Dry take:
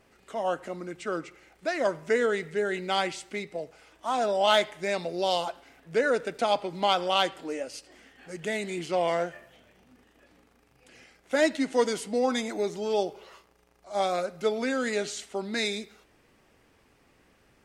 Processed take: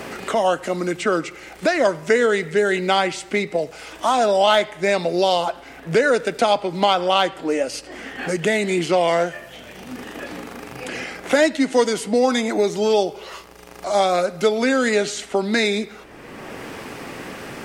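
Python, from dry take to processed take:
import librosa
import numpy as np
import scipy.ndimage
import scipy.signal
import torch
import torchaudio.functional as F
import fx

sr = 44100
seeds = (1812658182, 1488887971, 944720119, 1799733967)

y = fx.band_squash(x, sr, depth_pct=70)
y = y * 10.0 ** (9.0 / 20.0)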